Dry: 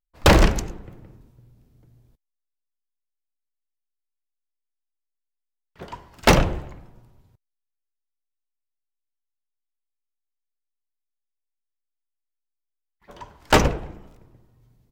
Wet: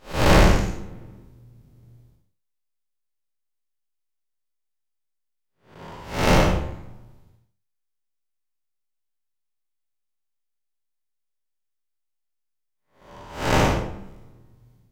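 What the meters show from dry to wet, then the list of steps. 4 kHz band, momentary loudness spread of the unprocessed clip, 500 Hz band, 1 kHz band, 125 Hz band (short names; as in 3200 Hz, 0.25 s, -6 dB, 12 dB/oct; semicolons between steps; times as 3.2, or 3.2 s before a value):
-2.0 dB, 19 LU, 0.0 dB, -0.5 dB, +1.0 dB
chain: time blur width 0.214 s; non-linear reverb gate 0.1 s flat, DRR 5 dB; gain +3.5 dB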